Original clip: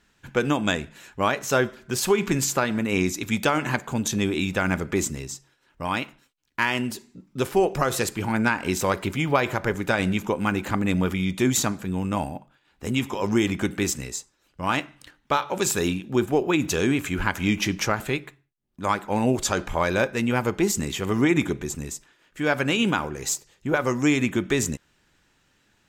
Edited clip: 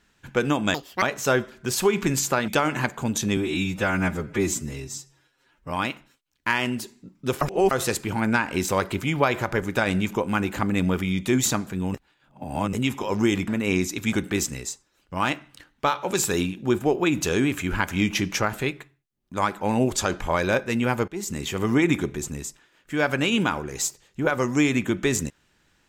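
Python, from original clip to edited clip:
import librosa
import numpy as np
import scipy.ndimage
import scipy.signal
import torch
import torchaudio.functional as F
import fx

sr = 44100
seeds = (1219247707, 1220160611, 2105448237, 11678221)

y = fx.edit(x, sr, fx.speed_span(start_s=0.74, length_s=0.53, speed=1.89),
    fx.move(start_s=2.73, length_s=0.65, to_s=13.6),
    fx.stretch_span(start_s=4.27, length_s=1.56, factor=1.5),
    fx.reverse_span(start_s=7.53, length_s=0.3),
    fx.reverse_span(start_s=12.06, length_s=0.79),
    fx.fade_in_from(start_s=20.55, length_s=0.41, floor_db=-19.5), tone=tone)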